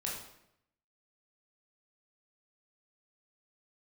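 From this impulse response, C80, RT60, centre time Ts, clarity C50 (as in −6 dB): 6.5 dB, 0.80 s, 46 ms, 3.0 dB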